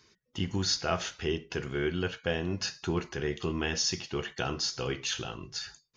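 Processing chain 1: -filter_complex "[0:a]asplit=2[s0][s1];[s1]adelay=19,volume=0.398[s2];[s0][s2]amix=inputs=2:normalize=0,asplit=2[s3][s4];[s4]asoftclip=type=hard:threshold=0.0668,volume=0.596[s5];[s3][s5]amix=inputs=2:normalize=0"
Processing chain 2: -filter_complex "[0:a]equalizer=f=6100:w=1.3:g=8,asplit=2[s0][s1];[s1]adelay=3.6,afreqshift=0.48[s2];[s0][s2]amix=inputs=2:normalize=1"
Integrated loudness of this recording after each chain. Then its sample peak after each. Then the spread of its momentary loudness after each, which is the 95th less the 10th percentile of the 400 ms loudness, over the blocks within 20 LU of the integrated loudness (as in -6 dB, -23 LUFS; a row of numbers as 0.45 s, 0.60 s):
-27.5 LUFS, -32.0 LUFS; -12.0 dBFS, -13.5 dBFS; 8 LU, 10 LU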